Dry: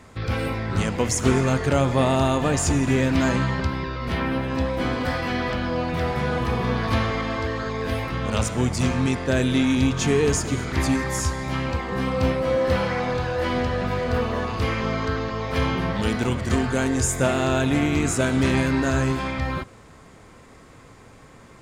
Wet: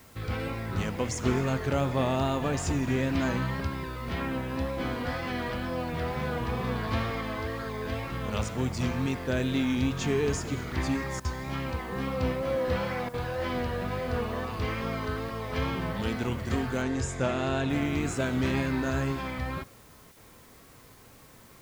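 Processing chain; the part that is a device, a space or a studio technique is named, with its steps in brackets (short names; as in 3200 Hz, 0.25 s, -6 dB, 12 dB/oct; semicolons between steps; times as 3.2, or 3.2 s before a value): worn cassette (LPF 6300 Hz 12 dB/oct; wow and flutter; level dips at 11.2/13.09/20.12, 46 ms -12 dB; white noise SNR 28 dB); 16.82–17.7 LPF 7900 Hz 12 dB/oct; gain -7 dB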